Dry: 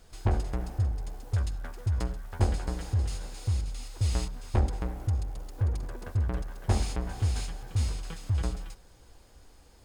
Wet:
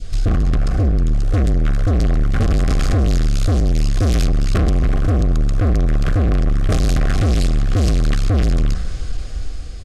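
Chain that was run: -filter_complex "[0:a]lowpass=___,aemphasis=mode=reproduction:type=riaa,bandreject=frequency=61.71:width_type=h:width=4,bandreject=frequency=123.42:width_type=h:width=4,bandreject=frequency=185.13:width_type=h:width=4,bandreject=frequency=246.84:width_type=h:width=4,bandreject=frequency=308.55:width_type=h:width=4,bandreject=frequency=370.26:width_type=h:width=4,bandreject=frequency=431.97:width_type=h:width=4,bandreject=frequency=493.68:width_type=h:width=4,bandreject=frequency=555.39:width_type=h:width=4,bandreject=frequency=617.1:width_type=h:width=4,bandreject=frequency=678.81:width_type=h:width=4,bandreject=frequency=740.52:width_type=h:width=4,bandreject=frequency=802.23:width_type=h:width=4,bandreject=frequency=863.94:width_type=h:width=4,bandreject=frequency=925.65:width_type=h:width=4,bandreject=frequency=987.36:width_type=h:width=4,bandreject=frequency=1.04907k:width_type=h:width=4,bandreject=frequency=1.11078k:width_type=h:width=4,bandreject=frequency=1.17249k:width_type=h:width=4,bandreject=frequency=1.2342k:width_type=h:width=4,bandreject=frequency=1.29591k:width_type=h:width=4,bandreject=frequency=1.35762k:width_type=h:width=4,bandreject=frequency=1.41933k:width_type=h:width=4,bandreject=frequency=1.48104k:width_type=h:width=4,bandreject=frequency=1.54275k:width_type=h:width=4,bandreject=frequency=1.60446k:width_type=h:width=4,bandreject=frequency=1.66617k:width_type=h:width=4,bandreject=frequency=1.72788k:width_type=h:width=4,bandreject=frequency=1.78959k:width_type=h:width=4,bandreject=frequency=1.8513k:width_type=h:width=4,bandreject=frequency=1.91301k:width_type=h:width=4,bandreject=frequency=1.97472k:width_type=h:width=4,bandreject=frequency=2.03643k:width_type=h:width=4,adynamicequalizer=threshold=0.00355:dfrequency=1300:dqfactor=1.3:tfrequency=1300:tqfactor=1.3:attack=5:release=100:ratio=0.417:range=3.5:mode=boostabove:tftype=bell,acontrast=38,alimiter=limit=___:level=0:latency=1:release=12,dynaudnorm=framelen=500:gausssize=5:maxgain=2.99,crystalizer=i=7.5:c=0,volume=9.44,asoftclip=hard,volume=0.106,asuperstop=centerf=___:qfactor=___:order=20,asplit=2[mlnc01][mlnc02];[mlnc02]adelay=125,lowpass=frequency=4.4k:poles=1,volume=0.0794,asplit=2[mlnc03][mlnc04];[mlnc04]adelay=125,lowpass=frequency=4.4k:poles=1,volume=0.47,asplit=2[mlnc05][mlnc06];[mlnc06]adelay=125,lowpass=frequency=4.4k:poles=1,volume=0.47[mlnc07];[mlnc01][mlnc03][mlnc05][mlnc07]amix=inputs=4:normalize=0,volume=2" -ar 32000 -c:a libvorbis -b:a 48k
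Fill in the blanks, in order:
7.2k, 0.398, 910, 4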